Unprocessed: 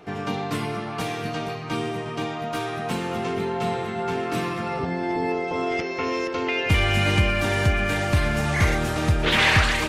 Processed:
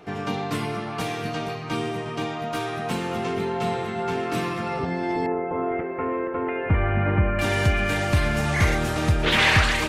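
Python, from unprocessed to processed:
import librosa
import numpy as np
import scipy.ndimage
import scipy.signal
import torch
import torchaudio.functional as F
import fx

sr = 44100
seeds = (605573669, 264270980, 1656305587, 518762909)

y = fx.cheby2_lowpass(x, sr, hz=7200.0, order=4, stop_db=70, at=(5.26, 7.39))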